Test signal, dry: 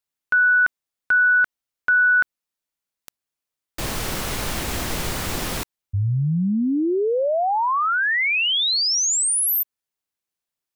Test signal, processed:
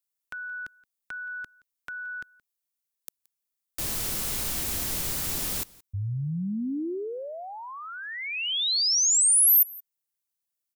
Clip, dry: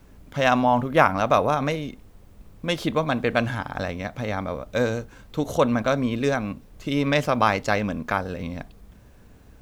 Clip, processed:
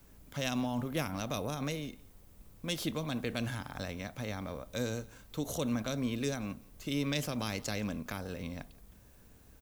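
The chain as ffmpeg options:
ffmpeg -i in.wav -filter_complex "[0:a]crystalizer=i=2:c=0,acrossover=split=390|2800[link_01][link_02][link_03];[link_02]acompressor=threshold=-31dB:ratio=6:attack=2.5:release=80:knee=2.83:detection=peak[link_04];[link_01][link_04][link_03]amix=inputs=3:normalize=0,aecho=1:1:173:0.0668,volume=-9dB" out.wav

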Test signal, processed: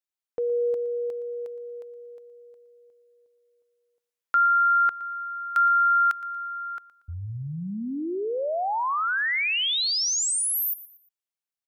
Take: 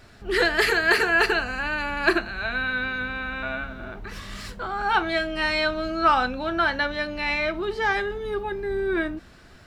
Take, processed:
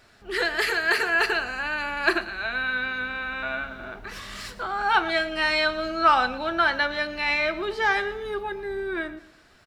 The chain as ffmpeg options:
ffmpeg -i in.wav -af "lowshelf=frequency=310:gain=-9.5,dynaudnorm=framelen=220:gausssize=11:maxgain=5dB,aecho=1:1:117|234|351:0.141|0.048|0.0163,volume=-3dB" out.wav

